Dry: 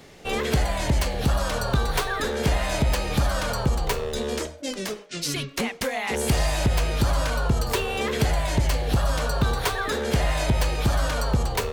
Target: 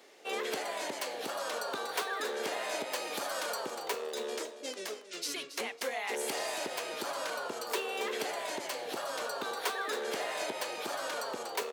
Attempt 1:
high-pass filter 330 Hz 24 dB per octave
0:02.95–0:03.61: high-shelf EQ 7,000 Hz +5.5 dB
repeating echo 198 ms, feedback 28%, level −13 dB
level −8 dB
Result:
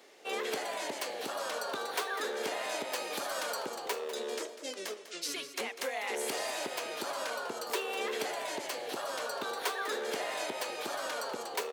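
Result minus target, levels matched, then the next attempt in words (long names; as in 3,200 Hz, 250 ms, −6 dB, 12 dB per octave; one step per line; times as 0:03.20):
echo 78 ms early
high-pass filter 330 Hz 24 dB per octave
0:02.95–0:03.61: high-shelf EQ 7,000 Hz +5.5 dB
repeating echo 276 ms, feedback 28%, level −13 dB
level −8 dB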